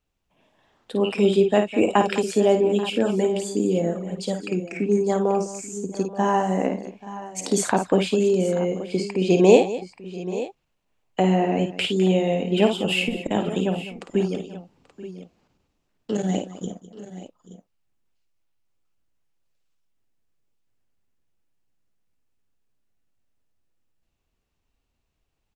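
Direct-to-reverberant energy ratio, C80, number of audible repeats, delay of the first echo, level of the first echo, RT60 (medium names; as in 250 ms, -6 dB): no reverb, no reverb, 4, 53 ms, -7.0 dB, no reverb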